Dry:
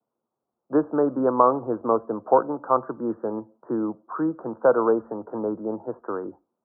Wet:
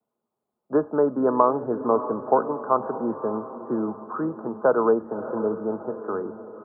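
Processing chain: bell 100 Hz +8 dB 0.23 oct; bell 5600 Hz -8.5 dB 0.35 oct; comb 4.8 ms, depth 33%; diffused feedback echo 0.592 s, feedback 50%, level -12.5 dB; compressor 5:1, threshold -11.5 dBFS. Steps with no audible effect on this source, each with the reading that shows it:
bell 5600 Hz: input band ends at 1500 Hz

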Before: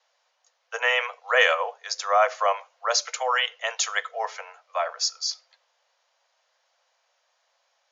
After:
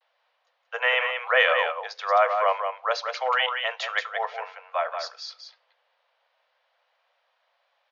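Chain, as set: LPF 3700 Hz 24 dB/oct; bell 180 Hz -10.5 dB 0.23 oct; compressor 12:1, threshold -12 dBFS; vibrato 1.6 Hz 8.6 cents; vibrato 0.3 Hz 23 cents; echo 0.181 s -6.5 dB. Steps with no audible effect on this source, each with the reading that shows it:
bell 180 Hz: input band starts at 400 Hz

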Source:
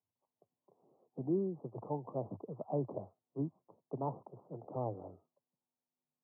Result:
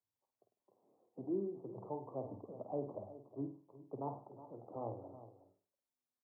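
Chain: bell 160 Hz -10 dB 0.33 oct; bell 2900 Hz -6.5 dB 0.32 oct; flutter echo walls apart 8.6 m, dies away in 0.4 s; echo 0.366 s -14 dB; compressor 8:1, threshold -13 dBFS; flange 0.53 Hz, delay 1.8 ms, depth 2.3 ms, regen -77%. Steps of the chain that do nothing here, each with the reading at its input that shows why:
bell 2900 Hz: input band ends at 1100 Hz; compressor, threshold -13 dBFS: input peak -22.5 dBFS

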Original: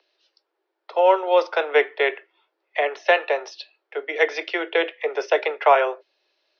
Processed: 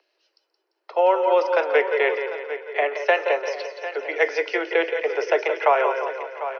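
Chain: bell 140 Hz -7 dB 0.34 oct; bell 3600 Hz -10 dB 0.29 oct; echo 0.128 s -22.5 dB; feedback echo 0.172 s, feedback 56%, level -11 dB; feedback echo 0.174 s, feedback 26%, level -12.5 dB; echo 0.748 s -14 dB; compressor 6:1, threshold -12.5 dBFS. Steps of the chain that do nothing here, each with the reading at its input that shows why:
bell 140 Hz: input band starts at 290 Hz

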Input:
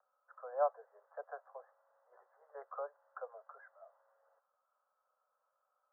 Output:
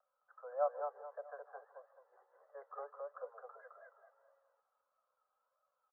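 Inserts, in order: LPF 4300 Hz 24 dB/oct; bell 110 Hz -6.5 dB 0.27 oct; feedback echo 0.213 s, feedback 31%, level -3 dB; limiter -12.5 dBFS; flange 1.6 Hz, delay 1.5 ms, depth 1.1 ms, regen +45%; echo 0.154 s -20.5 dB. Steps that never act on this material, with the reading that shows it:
LPF 4300 Hz: input band ends at 1700 Hz; bell 110 Hz: input band starts at 380 Hz; limiter -12.5 dBFS: input peak -21.5 dBFS

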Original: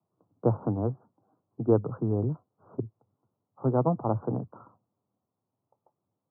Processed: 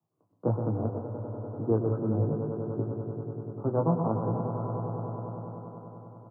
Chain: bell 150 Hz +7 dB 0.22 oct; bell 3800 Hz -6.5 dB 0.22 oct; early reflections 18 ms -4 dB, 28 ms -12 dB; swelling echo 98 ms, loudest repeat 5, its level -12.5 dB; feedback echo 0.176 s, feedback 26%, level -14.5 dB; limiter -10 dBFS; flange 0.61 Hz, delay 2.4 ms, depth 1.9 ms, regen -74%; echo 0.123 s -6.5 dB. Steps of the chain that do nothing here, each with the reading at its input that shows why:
bell 3800 Hz: input band ends at 1100 Hz

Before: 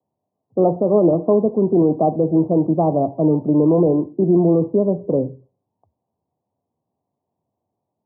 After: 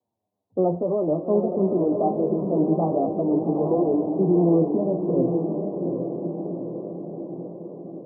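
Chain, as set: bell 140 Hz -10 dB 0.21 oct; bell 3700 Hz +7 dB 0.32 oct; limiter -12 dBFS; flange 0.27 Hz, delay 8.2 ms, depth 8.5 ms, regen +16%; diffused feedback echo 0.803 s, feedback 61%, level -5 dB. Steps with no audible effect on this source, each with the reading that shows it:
bell 3700 Hz: input band ends at 1000 Hz

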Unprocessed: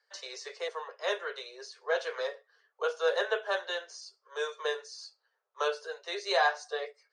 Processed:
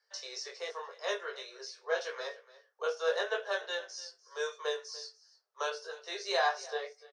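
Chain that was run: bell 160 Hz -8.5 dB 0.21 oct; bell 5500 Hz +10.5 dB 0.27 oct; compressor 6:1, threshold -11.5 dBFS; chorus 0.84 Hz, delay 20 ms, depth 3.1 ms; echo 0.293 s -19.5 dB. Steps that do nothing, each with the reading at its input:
bell 160 Hz: input band starts at 340 Hz; compressor, threshold -11.5 dBFS: input peak -14.0 dBFS

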